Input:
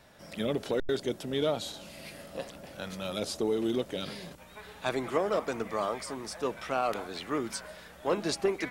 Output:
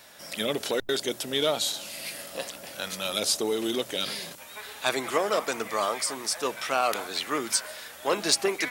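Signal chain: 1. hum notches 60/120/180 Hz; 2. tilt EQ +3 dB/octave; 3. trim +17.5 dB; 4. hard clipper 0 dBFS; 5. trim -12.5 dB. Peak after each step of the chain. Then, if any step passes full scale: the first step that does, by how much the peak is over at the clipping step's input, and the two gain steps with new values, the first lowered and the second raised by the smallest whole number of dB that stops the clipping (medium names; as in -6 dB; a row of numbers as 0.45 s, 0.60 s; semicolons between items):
-15.5 dBFS, -13.0 dBFS, +4.5 dBFS, 0.0 dBFS, -12.5 dBFS; step 3, 4.5 dB; step 3 +12.5 dB, step 5 -7.5 dB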